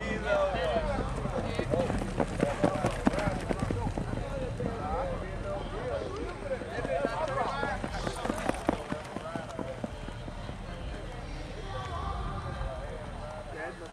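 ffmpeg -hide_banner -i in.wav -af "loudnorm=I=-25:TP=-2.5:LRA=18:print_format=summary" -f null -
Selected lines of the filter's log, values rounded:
Input Integrated:    -34.3 LUFS
Input True Peak:     -12.3 dBTP
Input LRA:             7.6 LU
Input Threshold:     -44.3 LUFS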